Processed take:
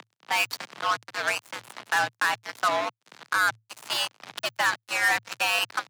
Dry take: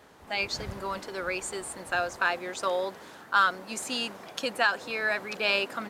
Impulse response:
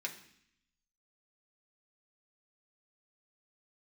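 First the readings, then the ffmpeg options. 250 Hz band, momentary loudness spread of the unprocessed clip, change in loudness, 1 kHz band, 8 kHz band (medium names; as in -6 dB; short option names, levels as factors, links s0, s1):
-6.5 dB, 10 LU, +3.0 dB, +2.5 dB, +3.5 dB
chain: -filter_complex "[0:a]highpass=f=730:w=0.5412,highpass=f=730:w=1.3066,aemphasis=mode=reproduction:type=riaa,acrossover=split=3500[s0][s1];[s0]acompressor=mode=upward:threshold=0.02:ratio=2.5[s2];[s2][s1]amix=inputs=2:normalize=0,alimiter=limit=0.0794:level=0:latency=1:release=101,asplit=2[s3][s4];[s4]volume=59.6,asoftclip=hard,volume=0.0168,volume=0.447[s5];[s3][s5]amix=inputs=2:normalize=0,acrusher=bits=4:mix=0:aa=0.5,afreqshift=110,volume=2.24"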